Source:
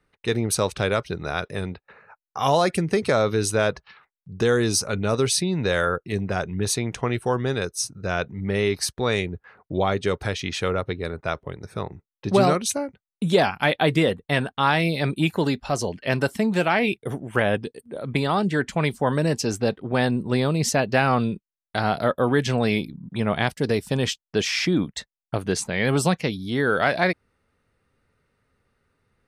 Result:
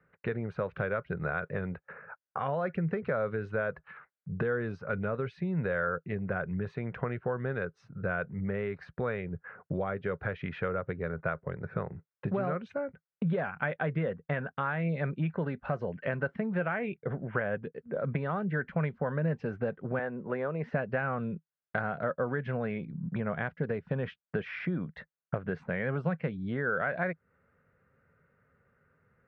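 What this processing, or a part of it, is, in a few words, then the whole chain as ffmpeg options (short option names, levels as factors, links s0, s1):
bass amplifier: -filter_complex "[0:a]asettb=1/sr,asplit=3[s0][s1][s2];[s0]atrim=end=19.994[s3];[s1]atrim=start=19.99:end=20.73,asetpts=PTS-STARTPTS,afade=t=in:d=0.004:c=qsin,afade=t=out:st=0.736:d=0.004:c=qsin,acrossover=split=300 2800:gain=0.2 1 0.224[s4][s5][s6];[s4][s5][s6]amix=inputs=3:normalize=0[s7];[s2]atrim=start=20.726[s8];[s3][s7]acrossfade=d=0.004:c1=hsin:c2=qsin[s9];[s9][s8]acrossfade=d=0.004:c1=qsin:c2=hsin,acompressor=threshold=0.0282:ratio=5,highpass=66,equalizer=f=160:t=q:w=4:g=7,equalizer=f=310:t=q:w=4:g=-7,equalizer=f=530:t=q:w=4:g=5,equalizer=f=860:t=q:w=4:g=-4,equalizer=f=1500:t=q:w=4:g=7,lowpass=f=2100:w=0.5412,lowpass=f=2100:w=1.3066"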